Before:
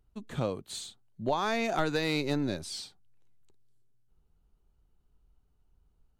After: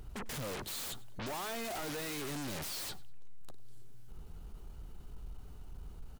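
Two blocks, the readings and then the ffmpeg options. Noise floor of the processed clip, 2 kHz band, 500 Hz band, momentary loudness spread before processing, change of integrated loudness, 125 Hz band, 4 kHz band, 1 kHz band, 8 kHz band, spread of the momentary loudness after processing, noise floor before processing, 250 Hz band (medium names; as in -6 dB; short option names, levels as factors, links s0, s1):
-49 dBFS, -7.5 dB, -10.5 dB, 12 LU, -7.5 dB, -7.5 dB, -4.5 dB, -9.0 dB, +2.0 dB, 15 LU, -71 dBFS, -10.5 dB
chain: -af "aeval=exprs='(tanh(141*val(0)+0.4)-tanh(0.4))/141':c=same,aeval=exprs='0.01*sin(PI/2*7.08*val(0)/0.01)':c=same,aecho=1:1:98|196:0.0794|0.0238,volume=1.26"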